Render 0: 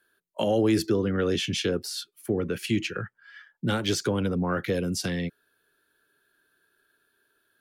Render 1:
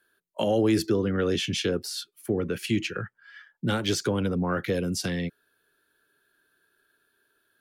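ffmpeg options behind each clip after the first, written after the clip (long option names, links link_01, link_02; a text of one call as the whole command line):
ffmpeg -i in.wav -af anull out.wav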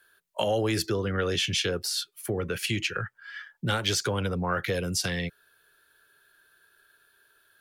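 ffmpeg -i in.wav -filter_complex "[0:a]equalizer=frequency=260:width_type=o:width=1.5:gain=-12,asplit=2[link_01][link_02];[link_02]acompressor=threshold=-38dB:ratio=6,volume=3dB[link_03];[link_01][link_03]amix=inputs=2:normalize=0" out.wav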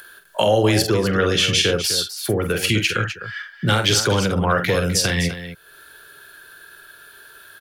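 ffmpeg -i in.wav -af "acompressor=mode=upward:threshold=-44dB:ratio=2.5,aecho=1:1:46.65|253.6:0.447|0.282,volume=8.5dB" out.wav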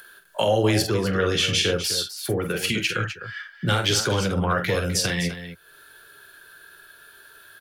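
ffmpeg -i in.wav -af "flanger=delay=4.3:depth=9.2:regen=-54:speed=0.37:shape=triangular" out.wav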